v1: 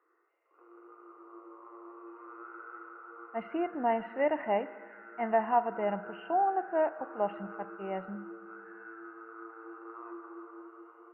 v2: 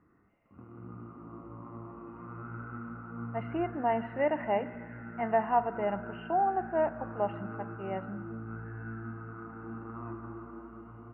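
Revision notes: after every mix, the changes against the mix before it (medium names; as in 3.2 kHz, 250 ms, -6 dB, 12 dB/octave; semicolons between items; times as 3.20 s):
background: remove rippled Chebyshev high-pass 330 Hz, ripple 6 dB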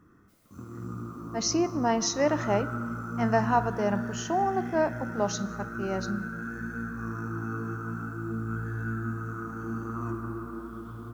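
speech: entry -2.00 s; master: remove rippled Chebyshev low-pass 2.9 kHz, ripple 9 dB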